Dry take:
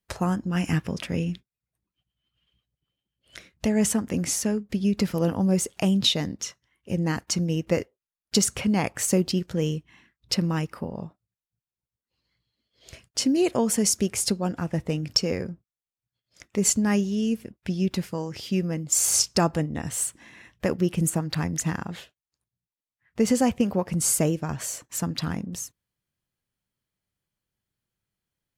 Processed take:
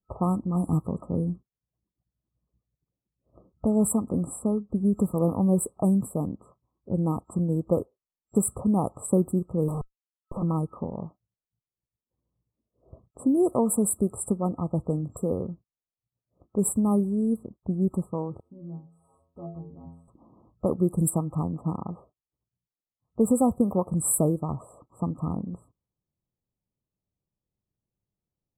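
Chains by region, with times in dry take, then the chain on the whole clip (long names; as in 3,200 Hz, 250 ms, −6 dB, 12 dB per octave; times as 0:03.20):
0:09.68–0:10.43: double-tracking delay 21 ms −5 dB + comparator with hysteresis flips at −41 dBFS
0:18.40–0:20.08: downward compressor 2.5 to 1, threshold −25 dBFS + stiff-string resonator 82 Hz, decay 0.63 s, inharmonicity 0.008
0:21.42–0:21.86: running median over 15 samples + high-pass filter 93 Hz 6 dB per octave
whole clip: low-pass that shuts in the quiet parts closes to 700 Hz, open at −20 dBFS; brick-wall band-stop 1,300–7,600 Hz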